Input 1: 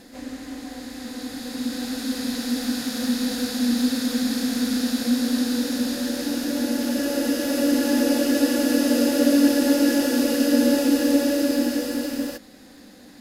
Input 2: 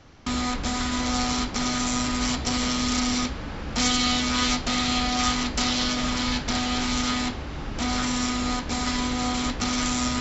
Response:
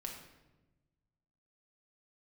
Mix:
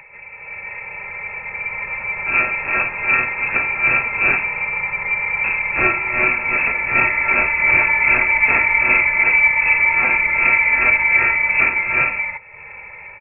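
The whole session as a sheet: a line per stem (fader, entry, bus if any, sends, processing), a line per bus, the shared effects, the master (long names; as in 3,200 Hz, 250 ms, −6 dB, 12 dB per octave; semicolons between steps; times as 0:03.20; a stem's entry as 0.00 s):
−4.0 dB, 0.00 s, no send, comb filter 2.4 ms, depth 96%; upward compression, threshold −32 dBFS
0.0 dB, 2.00 s, muted 0:04.43–0:05.44, send −6 dB, tremolo with a sine in dB 2.6 Hz, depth 18 dB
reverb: on, RT60 1.1 s, pre-delay 5 ms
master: voice inversion scrambler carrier 2,600 Hz; automatic gain control gain up to 9 dB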